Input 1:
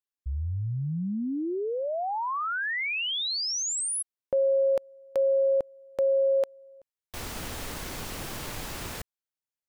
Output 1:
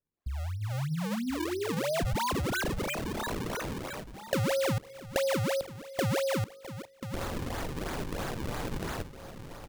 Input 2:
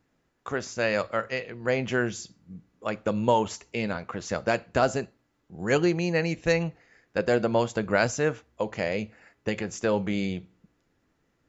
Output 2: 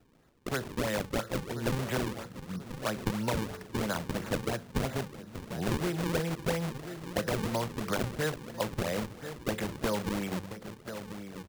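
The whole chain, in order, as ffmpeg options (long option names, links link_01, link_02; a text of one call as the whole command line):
ffmpeg -i in.wav -filter_complex "[0:a]acrossover=split=310|1300[link_01][link_02][link_03];[link_02]alimiter=limit=-20dB:level=0:latency=1:release=373[link_04];[link_01][link_04][link_03]amix=inputs=3:normalize=0,highshelf=frequency=2100:width_type=q:width=1.5:gain=-7.5,bandreject=frequency=48.39:width_type=h:width=4,bandreject=frequency=96.78:width_type=h:width=4,bandreject=frequency=145.17:width_type=h:width=4,bandreject=frequency=193.56:width_type=h:width=4,bandreject=frequency=241.95:width_type=h:width=4,bandreject=frequency=290.34:width_type=h:width=4,bandreject=frequency=338.73:width_type=h:width=4,bandreject=frequency=387.12:width_type=h:width=4,bandreject=frequency=435.51:width_type=h:width=4,bandreject=frequency=483.9:width_type=h:width=4,acrossover=split=230|590|6800[link_05][link_06][link_07][link_08];[link_05]acompressor=threshold=-39dB:ratio=4[link_09];[link_06]acompressor=threshold=-42dB:ratio=4[link_10];[link_07]acompressor=threshold=-34dB:ratio=4[link_11];[link_08]acompressor=threshold=-53dB:ratio=4[link_12];[link_09][link_10][link_11][link_12]amix=inputs=4:normalize=0,equalizer=frequency=140:width=5.9:gain=3,asplit=2[link_13][link_14];[link_14]adelay=1036,lowpass=frequency=2000:poles=1,volume=-14dB,asplit=2[link_15][link_16];[link_16]adelay=1036,lowpass=frequency=2000:poles=1,volume=0.46,asplit=2[link_17][link_18];[link_18]adelay=1036,lowpass=frequency=2000:poles=1,volume=0.46,asplit=2[link_19][link_20];[link_20]adelay=1036,lowpass=frequency=2000:poles=1,volume=0.46[link_21];[link_13][link_15][link_17][link_19][link_21]amix=inputs=5:normalize=0,asplit=2[link_22][link_23];[link_23]acompressor=threshold=-43dB:ratio=6:attack=16:release=352:detection=rms,volume=3dB[link_24];[link_22][link_24]amix=inputs=2:normalize=0,acrusher=samples=38:mix=1:aa=0.000001:lfo=1:lforange=60.8:lforate=3" out.wav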